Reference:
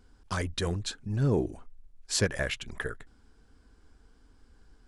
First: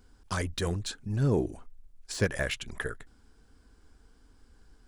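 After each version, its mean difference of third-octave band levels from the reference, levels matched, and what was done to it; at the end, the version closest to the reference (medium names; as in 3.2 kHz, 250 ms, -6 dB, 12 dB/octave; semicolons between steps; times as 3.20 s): 1.0 dB: de-esser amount 75%; treble shelf 8.4 kHz +7 dB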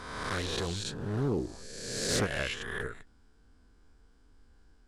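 8.0 dB: reverse spectral sustain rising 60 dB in 1.48 s; loudspeaker Doppler distortion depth 0.43 ms; trim -6 dB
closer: first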